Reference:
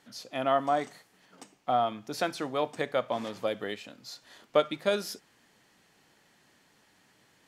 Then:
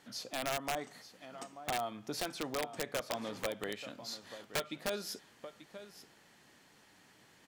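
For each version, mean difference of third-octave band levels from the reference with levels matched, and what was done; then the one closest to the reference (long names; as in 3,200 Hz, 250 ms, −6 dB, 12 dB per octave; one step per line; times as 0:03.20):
8.5 dB: downward compressor 3 to 1, threshold −37 dBFS, peak gain reduction 14 dB
on a send: single-tap delay 886 ms −13.5 dB
on the sum: wrap-around overflow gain 28 dB
level +1 dB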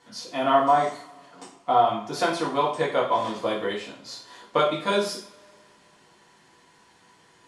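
4.5 dB: Butterworth low-pass 11,000 Hz 48 dB per octave
parametric band 1,000 Hz +12.5 dB 0.21 octaves
coupled-rooms reverb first 0.42 s, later 2.3 s, from −27 dB, DRR −4.5 dB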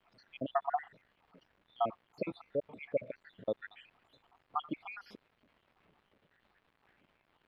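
11.5 dB: time-frequency cells dropped at random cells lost 80%
surface crackle 370 per second −50 dBFS
high-frequency loss of the air 480 metres
level +1 dB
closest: second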